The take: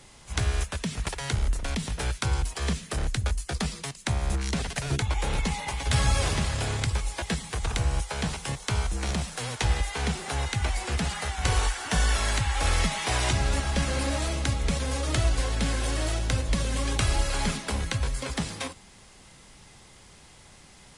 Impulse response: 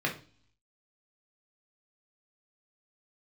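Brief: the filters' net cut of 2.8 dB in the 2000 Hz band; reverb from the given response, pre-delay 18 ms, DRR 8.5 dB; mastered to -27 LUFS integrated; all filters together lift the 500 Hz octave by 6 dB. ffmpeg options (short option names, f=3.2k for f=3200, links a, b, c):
-filter_complex "[0:a]equalizer=f=500:t=o:g=7.5,equalizer=f=2k:t=o:g=-4,asplit=2[a][b];[1:a]atrim=start_sample=2205,adelay=18[c];[b][c]afir=irnorm=-1:irlink=0,volume=-17dB[d];[a][d]amix=inputs=2:normalize=0,volume=0.5dB"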